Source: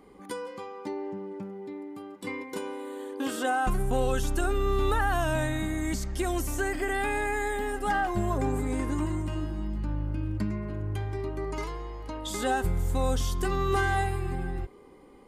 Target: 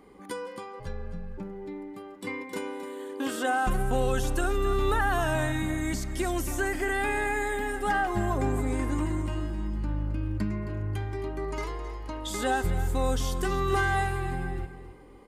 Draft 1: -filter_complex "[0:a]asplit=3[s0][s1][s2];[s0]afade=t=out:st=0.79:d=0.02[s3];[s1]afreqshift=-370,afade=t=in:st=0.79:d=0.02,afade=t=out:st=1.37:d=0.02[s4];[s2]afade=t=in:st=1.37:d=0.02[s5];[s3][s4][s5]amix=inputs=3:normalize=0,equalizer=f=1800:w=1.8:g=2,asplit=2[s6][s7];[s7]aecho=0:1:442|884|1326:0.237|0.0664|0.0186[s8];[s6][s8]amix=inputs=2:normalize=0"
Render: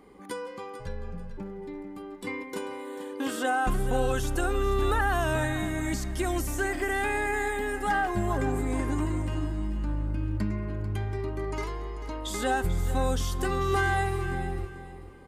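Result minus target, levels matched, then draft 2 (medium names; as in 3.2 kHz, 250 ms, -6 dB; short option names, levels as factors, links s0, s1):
echo 175 ms late
-filter_complex "[0:a]asplit=3[s0][s1][s2];[s0]afade=t=out:st=0.79:d=0.02[s3];[s1]afreqshift=-370,afade=t=in:st=0.79:d=0.02,afade=t=out:st=1.37:d=0.02[s4];[s2]afade=t=in:st=1.37:d=0.02[s5];[s3][s4][s5]amix=inputs=3:normalize=0,equalizer=f=1800:w=1.8:g=2,asplit=2[s6][s7];[s7]aecho=0:1:267|534|801:0.237|0.0664|0.0186[s8];[s6][s8]amix=inputs=2:normalize=0"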